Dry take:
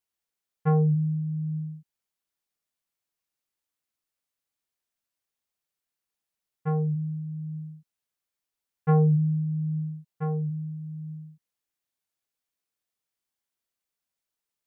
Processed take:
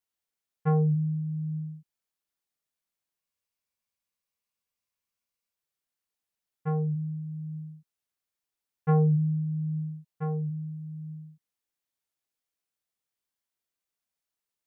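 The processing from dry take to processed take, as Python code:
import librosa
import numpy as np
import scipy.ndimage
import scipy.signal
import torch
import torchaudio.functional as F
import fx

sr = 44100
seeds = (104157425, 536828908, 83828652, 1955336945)

y = fx.spec_freeze(x, sr, seeds[0], at_s=3.22, hold_s=2.35)
y = F.gain(torch.from_numpy(y), -2.0).numpy()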